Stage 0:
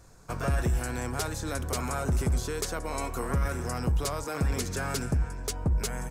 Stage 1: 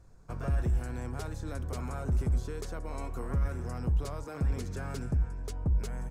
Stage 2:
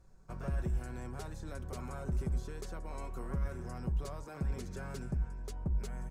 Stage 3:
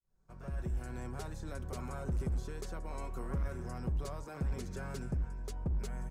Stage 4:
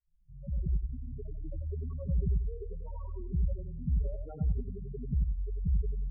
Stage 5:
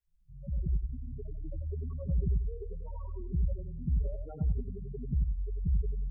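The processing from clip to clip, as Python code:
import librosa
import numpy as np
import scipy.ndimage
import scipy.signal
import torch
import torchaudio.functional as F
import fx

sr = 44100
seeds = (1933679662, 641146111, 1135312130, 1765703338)

y1 = fx.tilt_eq(x, sr, slope=-2.0)
y1 = y1 * 10.0 ** (-9.0 / 20.0)
y2 = y1 + 0.37 * np.pad(y1, (int(5.3 * sr / 1000.0), 0))[:len(y1)]
y2 = y2 * 10.0 ** (-5.0 / 20.0)
y3 = fx.fade_in_head(y2, sr, length_s=0.99)
y3 = np.clip(y3, -10.0 ** (-30.0 / 20.0), 10.0 ** (-30.0 / 20.0))
y3 = y3 * 10.0 ** (1.0 / 20.0)
y4 = fx.spec_topn(y3, sr, count=4)
y4 = fx.echo_feedback(y4, sr, ms=92, feedback_pct=23, wet_db=-6.5)
y4 = y4 * 10.0 ** (5.5 / 20.0)
y5 = fx.doppler_dist(y4, sr, depth_ms=0.19)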